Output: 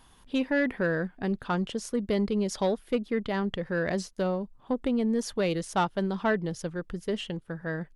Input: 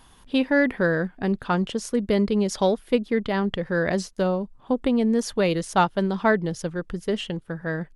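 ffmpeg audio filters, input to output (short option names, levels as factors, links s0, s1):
-af "asoftclip=type=tanh:threshold=0.251,volume=0.596"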